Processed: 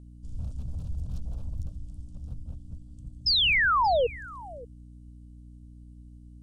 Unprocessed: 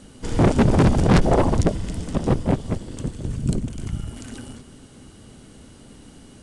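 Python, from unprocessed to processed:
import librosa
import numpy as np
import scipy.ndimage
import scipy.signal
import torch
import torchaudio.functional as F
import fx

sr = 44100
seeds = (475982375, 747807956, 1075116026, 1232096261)

p1 = np.minimum(x, 2.0 * 10.0 ** (-16.5 / 20.0) - x)
p2 = fx.tone_stack(p1, sr, knobs='10-0-1')
p3 = fx.fixed_phaser(p2, sr, hz=820.0, stages=4)
p4 = fx.spec_paint(p3, sr, seeds[0], shape='fall', start_s=3.26, length_s=0.81, low_hz=450.0, high_hz=5300.0, level_db=-17.0)
p5 = fx.peak_eq(p4, sr, hz=71.0, db=11.5, octaves=0.24)
p6 = fx.add_hum(p5, sr, base_hz=60, snr_db=17)
p7 = p6 + fx.echo_single(p6, sr, ms=580, db=-19.5, dry=0)
y = p7 * 10.0 ** (-5.5 / 20.0)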